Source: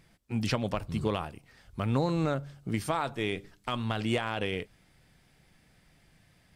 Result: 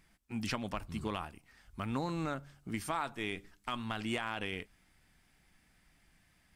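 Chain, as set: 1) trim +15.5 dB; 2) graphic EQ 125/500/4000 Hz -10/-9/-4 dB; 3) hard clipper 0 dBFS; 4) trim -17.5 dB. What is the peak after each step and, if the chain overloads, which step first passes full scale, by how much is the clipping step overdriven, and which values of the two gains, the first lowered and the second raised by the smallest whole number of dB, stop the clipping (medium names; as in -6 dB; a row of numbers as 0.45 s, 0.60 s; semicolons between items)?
-1.0 dBFS, -3.5 dBFS, -3.5 dBFS, -21.0 dBFS; nothing clips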